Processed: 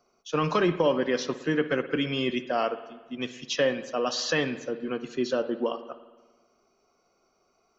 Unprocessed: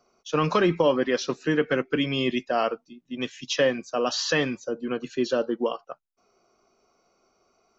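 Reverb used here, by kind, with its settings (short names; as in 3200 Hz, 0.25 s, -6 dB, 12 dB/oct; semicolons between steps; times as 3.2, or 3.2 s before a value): spring tank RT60 1.3 s, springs 56 ms, chirp 45 ms, DRR 12 dB; gain -2.5 dB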